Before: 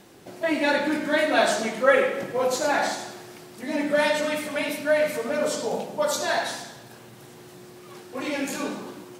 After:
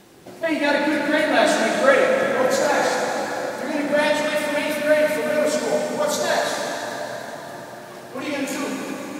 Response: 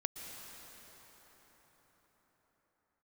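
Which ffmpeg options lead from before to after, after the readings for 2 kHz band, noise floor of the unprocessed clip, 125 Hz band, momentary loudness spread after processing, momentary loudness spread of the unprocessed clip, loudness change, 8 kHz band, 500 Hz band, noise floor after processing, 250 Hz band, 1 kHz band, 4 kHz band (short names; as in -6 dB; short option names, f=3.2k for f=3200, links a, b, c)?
+4.0 dB, -47 dBFS, +4.0 dB, 14 LU, 16 LU, +3.5 dB, +3.5 dB, +4.5 dB, -38 dBFS, +4.5 dB, +4.0 dB, +3.5 dB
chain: -filter_complex "[1:a]atrim=start_sample=2205[a];[0:a][a]afir=irnorm=-1:irlink=0,volume=3.5dB"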